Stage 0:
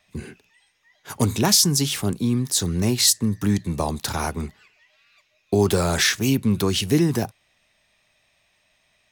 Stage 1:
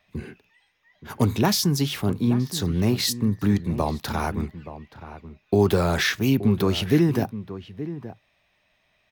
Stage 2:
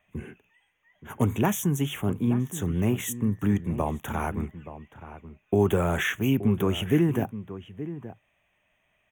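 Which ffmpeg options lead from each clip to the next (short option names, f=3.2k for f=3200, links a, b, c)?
-filter_complex "[0:a]equalizer=f=8.2k:w=0.8:g=-13.5,asplit=2[a][b];[b]adelay=874.6,volume=-13dB,highshelf=f=4k:g=-19.7[c];[a][c]amix=inputs=2:normalize=0"
-af "asuperstop=centerf=4600:order=8:qfactor=1.6,volume=-3dB"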